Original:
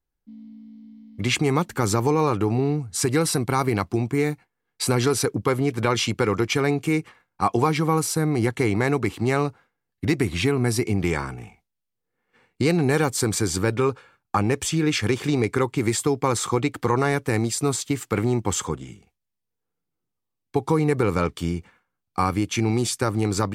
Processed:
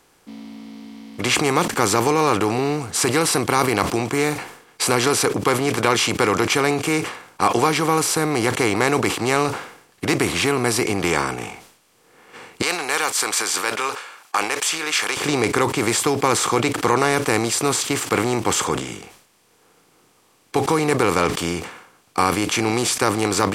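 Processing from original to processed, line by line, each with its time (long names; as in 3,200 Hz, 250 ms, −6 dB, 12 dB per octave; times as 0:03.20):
0:12.62–0:15.17: high-pass filter 1,100 Hz
whole clip: compressor on every frequency bin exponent 0.6; low-shelf EQ 210 Hz −12 dB; level that may fall only so fast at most 89 dB per second; level +2 dB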